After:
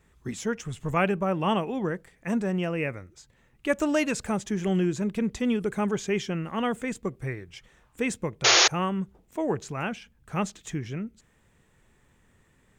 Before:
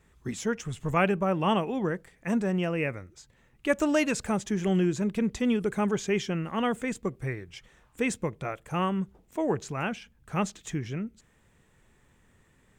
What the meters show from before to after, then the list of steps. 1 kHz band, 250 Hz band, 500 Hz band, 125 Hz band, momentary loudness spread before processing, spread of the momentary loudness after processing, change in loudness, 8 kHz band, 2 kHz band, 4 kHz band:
+1.0 dB, 0.0 dB, 0.0 dB, 0.0 dB, 10 LU, 12 LU, +2.0 dB, +9.5 dB, +3.5 dB, +12.0 dB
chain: painted sound noise, 8.44–8.68, 310–6900 Hz -18 dBFS

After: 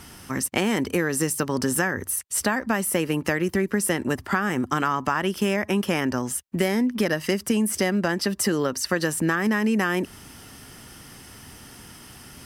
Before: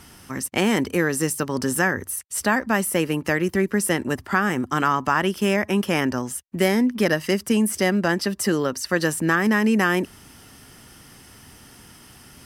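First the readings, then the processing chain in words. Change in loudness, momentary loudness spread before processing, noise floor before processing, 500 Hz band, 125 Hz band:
-2.0 dB, 5 LU, -48 dBFS, -2.5 dB, -2.0 dB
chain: compressor 4:1, threshold -22 dBFS, peak gain reduction 7.5 dB; gain +2.5 dB

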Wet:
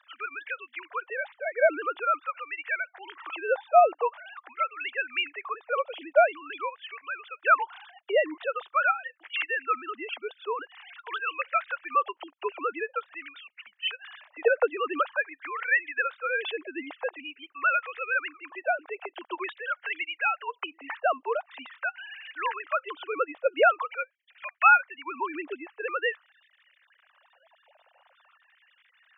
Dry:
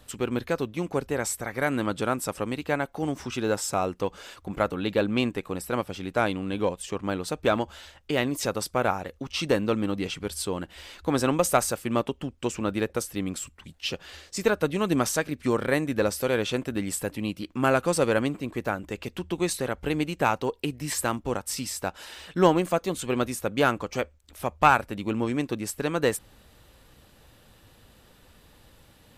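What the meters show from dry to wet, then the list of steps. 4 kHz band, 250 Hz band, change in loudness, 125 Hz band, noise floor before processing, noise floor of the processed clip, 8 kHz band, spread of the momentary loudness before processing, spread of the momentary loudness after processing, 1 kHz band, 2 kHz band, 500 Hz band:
-4.0 dB, -17.5 dB, -1.0 dB, under -40 dB, -57 dBFS, -68 dBFS, under -40 dB, 9 LU, 15 LU, +2.0 dB, +4.5 dB, -2.5 dB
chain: sine-wave speech; LFO high-pass sine 0.46 Hz 670–1900 Hz; gain +1.5 dB

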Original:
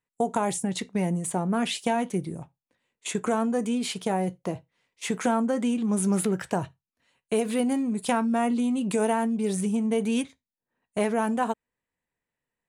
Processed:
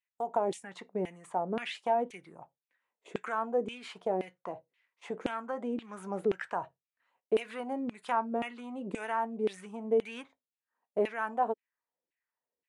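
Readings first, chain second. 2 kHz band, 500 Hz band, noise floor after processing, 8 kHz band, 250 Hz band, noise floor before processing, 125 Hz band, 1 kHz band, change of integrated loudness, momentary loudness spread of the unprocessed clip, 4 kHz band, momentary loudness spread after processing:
-5.0 dB, -4.0 dB, under -85 dBFS, under -20 dB, -14.0 dB, under -85 dBFS, -16.5 dB, -4.0 dB, -7.5 dB, 9 LU, -10.5 dB, 12 LU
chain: LFO band-pass saw down 1.9 Hz 360–2800 Hz; gain +1.5 dB

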